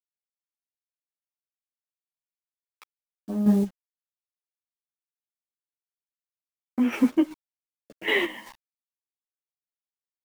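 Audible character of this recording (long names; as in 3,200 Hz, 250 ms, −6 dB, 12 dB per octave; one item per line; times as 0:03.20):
a quantiser's noise floor 8 bits, dither none
chopped level 2.6 Hz, depth 60%, duty 45%
a shimmering, thickened sound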